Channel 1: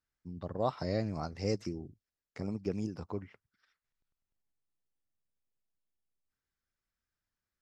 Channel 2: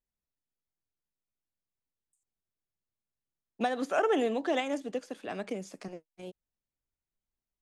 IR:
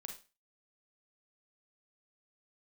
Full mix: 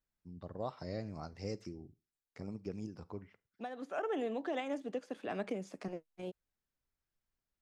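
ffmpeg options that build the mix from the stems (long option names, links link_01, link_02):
-filter_complex "[0:a]volume=-8dB,asplit=3[link_01][link_02][link_03];[link_02]volume=-10.5dB[link_04];[1:a]highshelf=frequency=4100:gain=-9.5,volume=1dB[link_05];[link_03]apad=whole_len=335971[link_06];[link_05][link_06]sidechaincompress=threshold=-58dB:ratio=16:attack=50:release=1440[link_07];[2:a]atrim=start_sample=2205[link_08];[link_04][link_08]afir=irnorm=-1:irlink=0[link_09];[link_01][link_07][link_09]amix=inputs=3:normalize=0,alimiter=level_in=3.5dB:limit=-24dB:level=0:latency=1:release=411,volume=-3.5dB"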